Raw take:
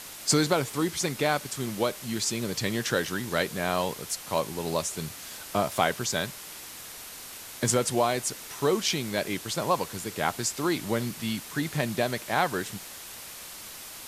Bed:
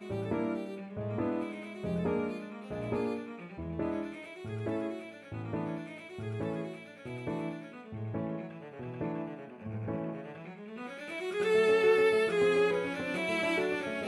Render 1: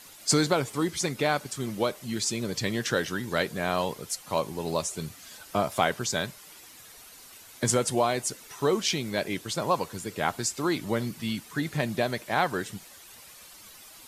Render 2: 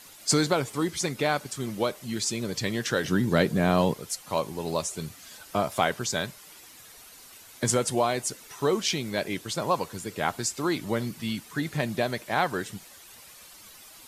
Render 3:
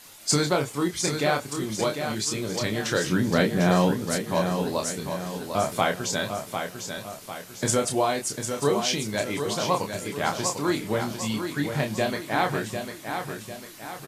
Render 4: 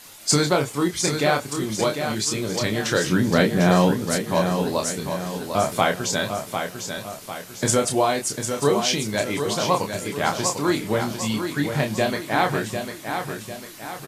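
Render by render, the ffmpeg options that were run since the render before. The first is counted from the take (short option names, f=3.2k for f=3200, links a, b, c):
-af "afftdn=nr=10:nf=-43"
-filter_complex "[0:a]asettb=1/sr,asplit=3[a][b][c];[a]atrim=end=3.044[d];[b]atrim=start=3.04:end=3.94,asetpts=PTS-STARTPTS,afade=t=in:d=0.004:c=qsin,afade=t=out:st=0.896:d=0.004:c=qsin,equalizer=f=170:t=o:w=2.9:g=11[e];[c]atrim=start=3.936[f];[d][e]acrossfade=d=0.004:c1=hsin:c2=qsin[g];[g][f]acrossfade=d=0.004:c1=qsin:c2=hsin"
-filter_complex "[0:a]asplit=2[a][b];[b]adelay=28,volume=-5dB[c];[a][c]amix=inputs=2:normalize=0,aecho=1:1:749|1498|2247|2996|3745:0.447|0.201|0.0905|0.0407|0.0183"
-af "volume=3.5dB"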